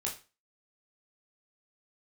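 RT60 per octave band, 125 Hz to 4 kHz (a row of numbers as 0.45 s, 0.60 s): 0.35 s, 0.30 s, 0.30 s, 0.30 s, 0.30 s, 0.30 s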